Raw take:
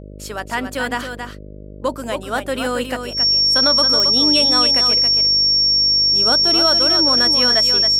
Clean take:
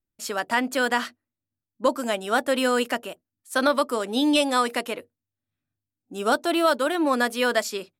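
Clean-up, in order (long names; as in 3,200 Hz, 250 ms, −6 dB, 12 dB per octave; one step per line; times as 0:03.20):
click removal
hum removal 50.5 Hz, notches 12
notch filter 5,500 Hz, Q 30
echo removal 273 ms −7 dB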